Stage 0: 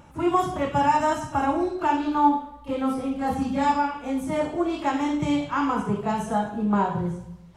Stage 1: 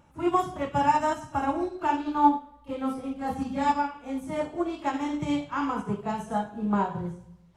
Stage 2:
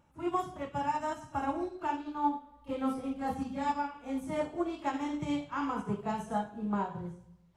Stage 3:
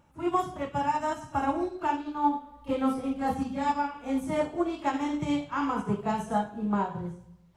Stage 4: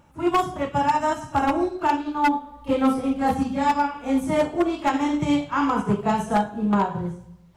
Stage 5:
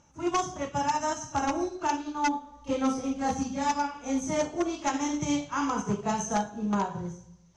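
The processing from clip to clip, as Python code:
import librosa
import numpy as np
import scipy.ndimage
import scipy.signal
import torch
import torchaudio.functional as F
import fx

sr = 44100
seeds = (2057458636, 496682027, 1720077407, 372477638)

y1 = fx.upward_expand(x, sr, threshold_db=-33.0, expansion=1.5)
y2 = fx.rider(y1, sr, range_db=5, speed_s=0.5)
y2 = F.gain(torch.from_numpy(y2), -6.5).numpy()
y3 = fx.rider(y2, sr, range_db=10, speed_s=0.5)
y3 = F.gain(torch.from_numpy(y3), 5.0).numpy()
y4 = 10.0 ** (-19.0 / 20.0) * (np.abs((y3 / 10.0 ** (-19.0 / 20.0) + 3.0) % 4.0 - 2.0) - 1.0)
y4 = F.gain(torch.from_numpy(y4), 7.0).numpy()
y5 = fx.lowpass_res(y4, sr, hz=6200.0, q=13.0)
y5 = F.gain(torch.from_numpy(y5), -7.0).numpy()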